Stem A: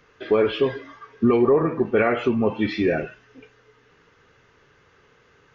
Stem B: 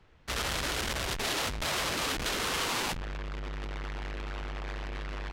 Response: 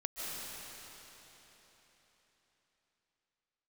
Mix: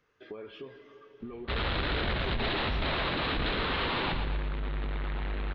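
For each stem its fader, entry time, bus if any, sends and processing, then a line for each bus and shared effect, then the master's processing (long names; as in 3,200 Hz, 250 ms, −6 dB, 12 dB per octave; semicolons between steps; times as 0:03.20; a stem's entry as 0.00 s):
−17.0 dB, 0.00 s, send −12.5 dB, no echo send, downward compressor 6 to 1, threshold −24 dBFS, peak gain reduction 10.5 dB
0.0 dB, 1.20 s, no send, echo send −7.5 dB, elliptic low-pass filter 4,000 Hz, stop band 40 dB; low-shelf EQ 350 Hz +7 dB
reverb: on, RT60 4.1 s, pre-delay 110 ms
echo: repeating echo 115 ms, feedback 50%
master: no processing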